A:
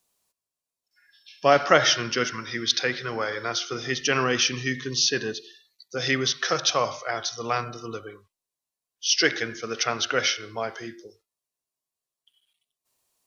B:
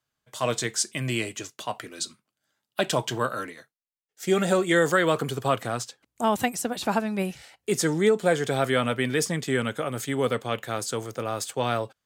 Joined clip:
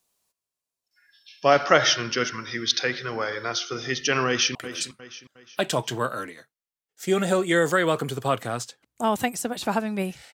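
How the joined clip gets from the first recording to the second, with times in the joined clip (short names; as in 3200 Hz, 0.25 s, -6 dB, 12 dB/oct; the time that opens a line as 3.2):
A
4.27–4.55 echo throw 0.36 s, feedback 40%, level -11.5 dB
4.55 switch to B from 1.75 s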